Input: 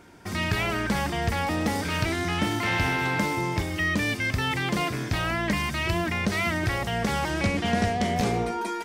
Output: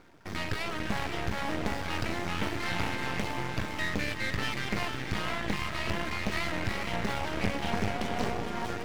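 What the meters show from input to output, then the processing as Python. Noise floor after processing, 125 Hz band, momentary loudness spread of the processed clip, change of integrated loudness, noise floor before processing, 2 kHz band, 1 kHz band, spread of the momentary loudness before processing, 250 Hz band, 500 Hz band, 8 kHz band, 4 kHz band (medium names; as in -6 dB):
-36 dBFS, -8.0 dB, 2 LU, -6.5 dB, -32 dBFS, -6.5 dB, -6.5 dB, 3 LU, -7.5 dB, -6.0 dB, -7.5 dB, -5.0 dB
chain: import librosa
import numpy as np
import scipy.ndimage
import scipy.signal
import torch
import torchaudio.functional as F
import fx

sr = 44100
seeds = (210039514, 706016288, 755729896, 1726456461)

y = scipy.signal.medfilt(x, 5)
y = fx.dereverb_blind(y, sr, rt60_s=0.85)
y = fx.echo_diffused(y, sr, ms=466, feedback_pct=45, wet_db=-4.5)
y = np.maximum(y, 0.0)
y = fx.doppler_dist(y, sr, depth_ms=0.31)
y = y * 10.0 ** (-1.5 / 20.0)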